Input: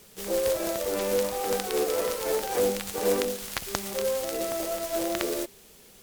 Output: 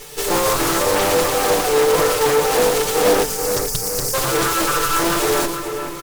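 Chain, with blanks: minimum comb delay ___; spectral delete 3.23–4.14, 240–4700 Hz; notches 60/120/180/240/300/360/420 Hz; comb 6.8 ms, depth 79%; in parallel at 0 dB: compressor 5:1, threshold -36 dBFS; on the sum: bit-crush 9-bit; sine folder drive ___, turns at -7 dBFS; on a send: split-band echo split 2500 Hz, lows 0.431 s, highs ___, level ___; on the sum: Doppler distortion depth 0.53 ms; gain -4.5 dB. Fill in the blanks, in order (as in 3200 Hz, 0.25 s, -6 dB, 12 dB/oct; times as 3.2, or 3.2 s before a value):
2.3 ms, 11 dB, 0.115 s, -7.5 dB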